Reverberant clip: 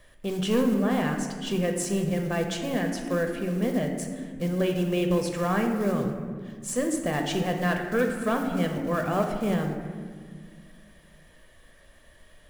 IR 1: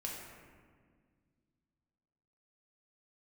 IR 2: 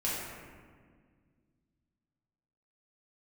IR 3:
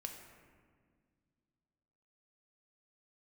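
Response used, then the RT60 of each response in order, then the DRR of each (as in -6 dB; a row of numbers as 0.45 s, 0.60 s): 3; 1.8 s, 1.8 s, 1.9 s; -3.0 dB, -8.0 dB, 3.0 dB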